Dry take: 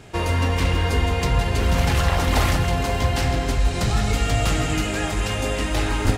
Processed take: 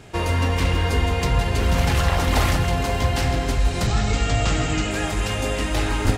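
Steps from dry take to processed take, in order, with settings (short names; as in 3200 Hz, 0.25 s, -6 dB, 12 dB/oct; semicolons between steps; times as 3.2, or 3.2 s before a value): 3.87–4.91 steep low-pass 8300 Hz 72 dB/oct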